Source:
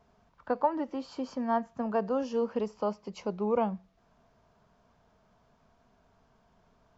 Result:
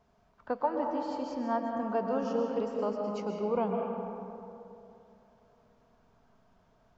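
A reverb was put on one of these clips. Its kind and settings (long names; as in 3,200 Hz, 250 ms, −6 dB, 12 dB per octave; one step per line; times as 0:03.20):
comb and all-pass reverb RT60 2.9 s, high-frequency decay 0.4×, pre-delay 90 ms, DRR 1.5 dB
level −3 dB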